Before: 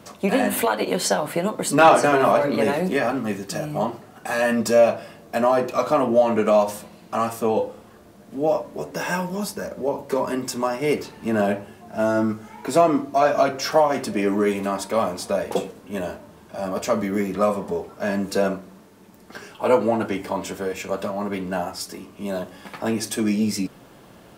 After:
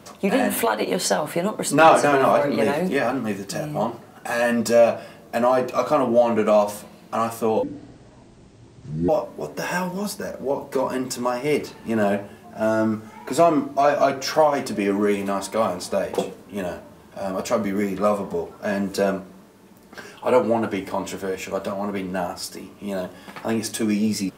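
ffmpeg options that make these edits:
-filter_complex "[0:a]asplit=3[s0][s1][s2];[s0]atrim=end=7.634[s3];[s1]atrim=start=7.63:end=8.46,asetpts=PTS-STARTPTS,asetrate=25137,aresample=44100[s4];[s2]atrim=start=8.456[s5];[s3][s4]acrossfade=d=0.004:c1=hsin:c2=hsin[s6];[s6][s5]acrossfade=d=0.004:c1=hsin:c2=hsin"

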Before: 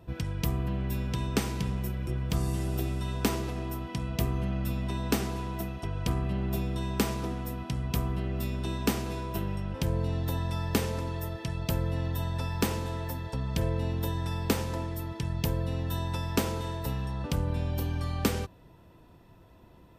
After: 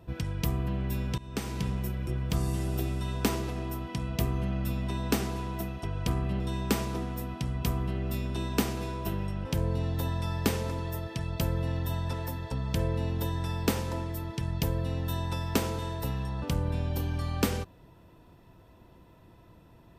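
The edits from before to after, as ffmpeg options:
-filter_complex "[0:a]asplit=4[s0][s1][s2][s3];[s0]atrim=end=1.18,asetpts=PTS-STARTPTS,afade=t=out:st=1.176:d=0.004:c=hsin:silence=0.112202[s4];[s1]atrim=start=1.18:end=6.402,asetpts=PTS-STARTPTS,afade=t=in:d=0.45:silence=0.112202[s5];[s2]atrim=start=6.688:end=12.422[s6];[s3]atrim=start=12.948[s7];[s4][s5]concat=n=2:v=0:a=1[s8];[s8][s6]acrossfade=d=0.004:c1=hsin:c2=hsin[s9];[s9][s7]acrossfade=d=0.004:c1=hsin:c2=hsin"

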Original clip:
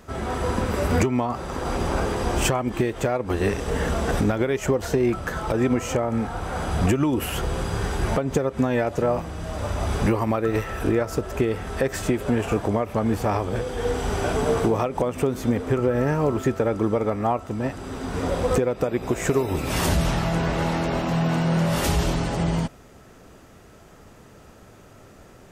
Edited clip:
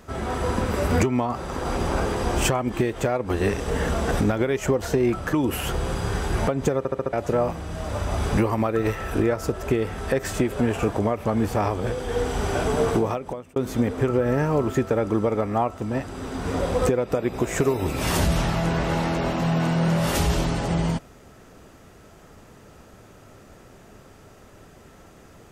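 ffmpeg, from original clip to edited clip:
-filter_complex "[0:a]asplit=8[s0][s1][s2][s3][s4][s5][s6][s7];[s0]atrim=end=5.332[s8];[s1]atrim=start=7.018:end=8.542[s9];[s2]atrim=start=8.468:end=8.542[s10];[s3]atrim=start=8.468:end=8.542[s11];[s4]atrim=start=8.468:end=8.542[s12];[s5]atrim=start=8.468:end=8.542[s13];[s6]atrim=start=8.818:end=15.25,asetpts=PTS-STARTPTS,afade=t=out:st=5.822:d=0.61[s14];[s7]atrim=start=15.25,asetpts=PTS-STARTPTS,afade=t=in:d=0.004:c=hsin[s15];[s8][s9]acrossfade=d=0.004:c1=hsin:c2=hsin[s16];[s16][s10]acrossfade=d=0.004:c1=hsin:c2=hsin[s17];[s17][s11]acrossfade=d=0.004:c1=hsin:c2=hsin[s18];[s18][s12]acrossfade=d=0.004:c1=hsin:c2=hsin[s19];[s19][s13]acrossfade=d=0.004:c1=hsin:c2=hsin[s20];[s14][s15]concat=n=2:v=0:a=1[s21];[s20][s21]acrossfade=d=0.004:c1=hsin:c2=hsin"

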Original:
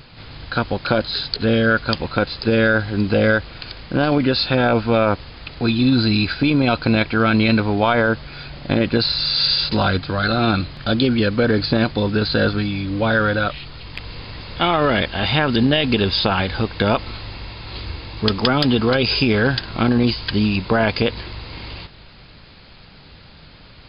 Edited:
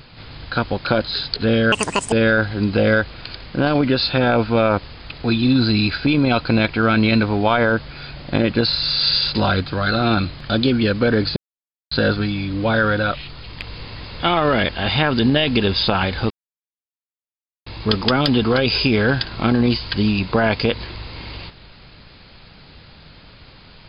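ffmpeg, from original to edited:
-filter_complex "[0:a]asplit=7[s0][s1][s2][s3][s4][s5][s6];[s0]atrim=end=1.724[s7];[s1]atrim=start=1.72:end=2.49,asetpts=PTS-STARTPTS,asetrate=84231,aresample=44100[s8];[s2]atrim=start=2.486:end=11.73,asetpts=PTS-STARTPTS,afade=t=out:st=9.24:d=0.004:c=hsin[s9];[s3]atrim=start=11.73:end=12.28,asetpts=PTS-STARTPTS,volume=0[s10];[s4]atrim=start=12.28:end=16.67,asetpts=PTS-STARTPTS,afade=t=in:d=0.004:c=hsin,afade=t=out:st=4.386:d=0.004:c=hsin[s11];[s5]atrim=start=16.67:end=18.03,asetpts=PTS-STARTPTS,volume=0[s12];[s6]atrim=start=18.03,asetpts=PTS-STARTPTS,afade=t=in:d=0.004:c=hsin[s13];[s7][s8]acrossfade=d=0.004:c1=hsin:c2=hsin[s14];[s9][s10][s11][s12][s13]concat=n=5:v=0:a=1[s15];[s14][s15]acrossfade=d=0.004:c1=hsin:c2=hsin"

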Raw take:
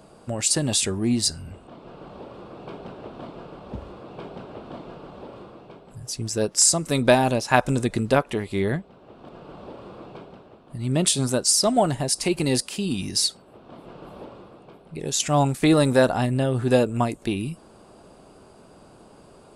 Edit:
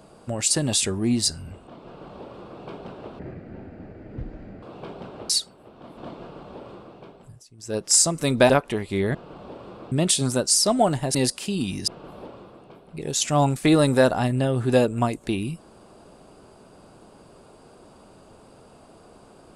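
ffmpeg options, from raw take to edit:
-filter_complex "[0:a]asplit=12[s0][s1][s2][s3][s4][s5][s6][s7][s8][s9][s10][s11];[s0]atrim=end=3.194[s12];[s1]atrim=start=3.19:end=3.98,asetpts=PTS-STARTPTS,asetrate=24255,aresample=44100[s13];[s2]atrim=start=3.976:end=4.652[s14];[s3]atrim=start=13.178:end=13.862[s15];[s4]atrim=start=4.648:end=6.11,asetpts=PTS-STARTPTS,afade=t=out:st=1.182:d=0.28:silence=0.0891251[s16];[s5]atrim=start=6.11:end=6.25,asetpts=PTS-STARTPTS,volume=0.0891[s17];[s6]atrim=start=6.25:end=7.172,asetpts=PTS-STARTPTS,afade=t=in:d=0.28:silence=0.0891251[s18];[s7]atrim=start=8.108:end=8.762[s19];[s8]atrim=start=9.328:end=10.102[s20];[s9]atrim=start=10.888:end=12.122[s21];[s10]atrim=start=12.448:end=13.182[s22];[s11]atrim=start=13.858[s23];[s12][s13]acrossfade=d=0.004:c1=hsin:c2=hsin[s24];[s24][s14]acrossfade=d=0.004:c1=hsin:c2=hsin[s25];[s25][s15]acrossfade=d=0.004:c1=hsin:c2=hsin[s26];[s16][s17][s18]concat=n=3:v=0:a=1[s27];[s26][s27]acrossfade=d=0.004:c1=hsin:c2=hsin[s28];[s28][s19]acrossfade=d=0.004:c1=hsin:c2=hsin[s29];[s29][s20]acrossfade=d=0.004:c1=hsin:c2=hsin[s30];[s30][s21]acrossfade=d=0.004:c1=hsin:c2=hsin[s31];[s31][s22]acrossfade=d=0.004:c1=hsin:c2=hsin[s32];[s32][s23]acrossfade=d=0.004:c1=hsin:c2=hsin"

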